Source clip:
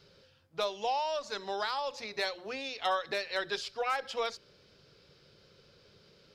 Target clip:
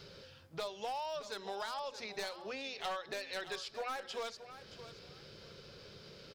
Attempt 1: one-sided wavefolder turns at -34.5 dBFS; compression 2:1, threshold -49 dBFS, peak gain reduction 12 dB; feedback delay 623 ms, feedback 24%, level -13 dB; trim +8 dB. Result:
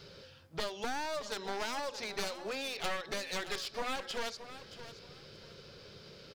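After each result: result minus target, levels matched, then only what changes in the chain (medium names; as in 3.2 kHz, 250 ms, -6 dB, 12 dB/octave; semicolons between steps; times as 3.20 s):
one-sided wavefolder: distortion +13 dB; compression: peak gain reduction -5 dB
change: one-sided wavefolder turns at -26.5 dBFS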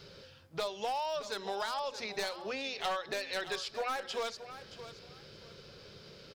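compression: peak gain reduction -4.5 dB
change: compression 2:1, threshold -58.5 dBFS, peak gain reduction 16.5 dB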